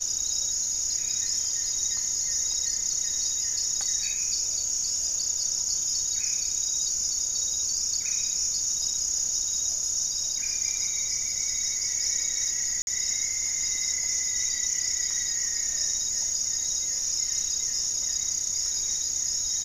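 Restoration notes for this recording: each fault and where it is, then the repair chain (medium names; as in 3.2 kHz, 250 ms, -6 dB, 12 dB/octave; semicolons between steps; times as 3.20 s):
12.82–12.87 s: dropout 51 ms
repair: interpolate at 12.82 s, 51 ms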